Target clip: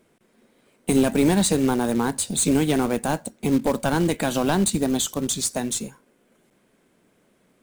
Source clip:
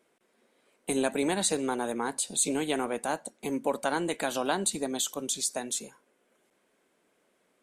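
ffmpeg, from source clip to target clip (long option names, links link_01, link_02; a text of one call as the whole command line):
ffmpeg -i in.wav -af "asoftclip=type=hard:threshold=-23dB,acrusher=bits=3:mode=log:mix=0:aa=0.000001,bass=frequency=250:gain=15,treble=frequency=4000:gain=0,volume=5dB" out.wav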